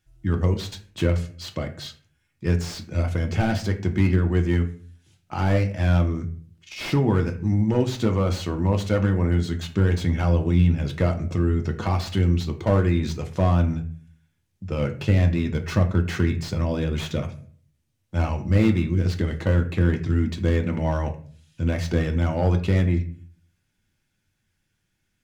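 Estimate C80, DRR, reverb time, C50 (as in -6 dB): 17.0 dB, 4.0 dB, 0.50 s, 13.0 dB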